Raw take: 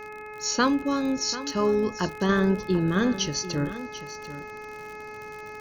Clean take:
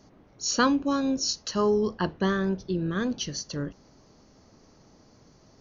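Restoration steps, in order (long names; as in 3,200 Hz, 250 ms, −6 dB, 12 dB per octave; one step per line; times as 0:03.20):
click removal
hum removal 425.1 Hz, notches 6
echo removal 741 ms −13.5 dB
level correction −4.5 dB, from 0:02.29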